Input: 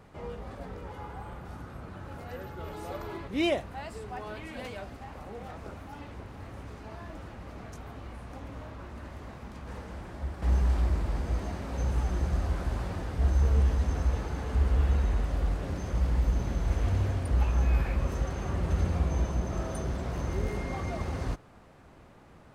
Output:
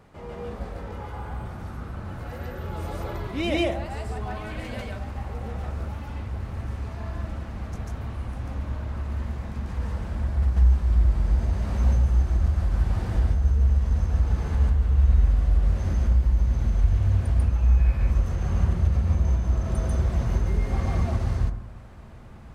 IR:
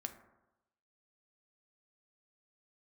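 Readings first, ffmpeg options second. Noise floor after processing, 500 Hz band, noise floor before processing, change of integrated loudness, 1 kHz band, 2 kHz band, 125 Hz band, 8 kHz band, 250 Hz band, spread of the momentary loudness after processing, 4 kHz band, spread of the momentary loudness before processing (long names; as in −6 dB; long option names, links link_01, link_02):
−39 dBFS, +1.5 dB, −54 dBFS, +5.5 dB, +1.5 dB, +2.0 dB, +7.0 dB, +0.5 dB, +3.0 dB, 14 LU, +2.5 dB, 17 LU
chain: -filter_complex "[0:a]asubboost=boost=2.5:cutoff=180,alimiter=limit=-18.5dB:level=0:latency=1:release=344,asplit=2[link_01][link_02];[1:a]atrim=start_sample=2205,asetrate=42777,aresample=44100,adelay=143[link_03];[link_02][link_03]afir=irnorm=-1:irlink=0,volume=5dB[link_04];[link_01][link_04]amix=inputs=2:normalize=0"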